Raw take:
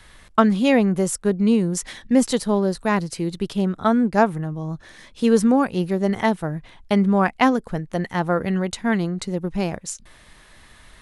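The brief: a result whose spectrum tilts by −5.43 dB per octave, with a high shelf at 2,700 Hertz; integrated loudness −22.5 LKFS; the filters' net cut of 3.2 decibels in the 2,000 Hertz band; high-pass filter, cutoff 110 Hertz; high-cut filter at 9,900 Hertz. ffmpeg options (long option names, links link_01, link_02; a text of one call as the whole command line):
ffmpeg -i in.wav -af "highpass=110,lowpass=9900,equalizer=frequency=2000:width_type=o:gain=-6,highshelf=frequency=2700:gain=5,volume=-1dB" out.wav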